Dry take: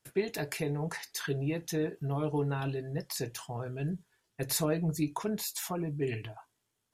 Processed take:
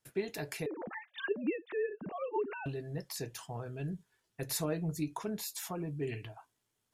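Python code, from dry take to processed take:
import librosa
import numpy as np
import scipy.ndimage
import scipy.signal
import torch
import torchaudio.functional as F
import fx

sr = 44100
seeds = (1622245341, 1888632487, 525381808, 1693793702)

y = fx.sine_speech(x, sr, at=(0.66, 2.66))
y = fx.recorder_agc(y, sr, target_db=-25.0, rise_db_per_s=5.5, max_gain_db=30)
y = F.gain(torch.from_numpy(y), -4.5).numpy()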